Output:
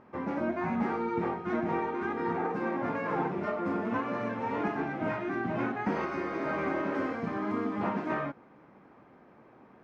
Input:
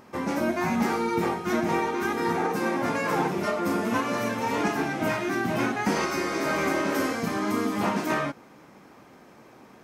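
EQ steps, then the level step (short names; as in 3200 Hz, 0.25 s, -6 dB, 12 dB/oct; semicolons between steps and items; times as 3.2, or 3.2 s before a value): LPF 1900 Hz 12 dB/oct; -5.0 dB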